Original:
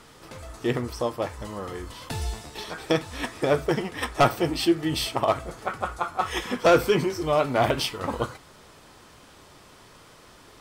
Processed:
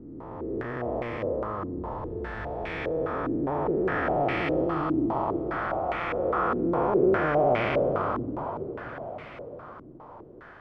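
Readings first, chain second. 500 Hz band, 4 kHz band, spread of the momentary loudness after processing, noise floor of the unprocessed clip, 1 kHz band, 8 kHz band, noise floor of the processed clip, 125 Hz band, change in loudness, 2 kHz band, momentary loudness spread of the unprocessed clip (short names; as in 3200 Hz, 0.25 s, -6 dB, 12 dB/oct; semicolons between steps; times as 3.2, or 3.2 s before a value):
-1.0 dB, -15.5 dB, 18 LU, -51 dBFS, -1.0 dB, under -30 dB, -47 dBFS, -3.0 dB, -2.0 dB, -1.0 dB, 14 LU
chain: time blur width 0.786 s; diffused feedback echo 0.56 s, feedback 54%, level -9.5 dB; stepped low-pass 4.9 Hz 300–2200 Hz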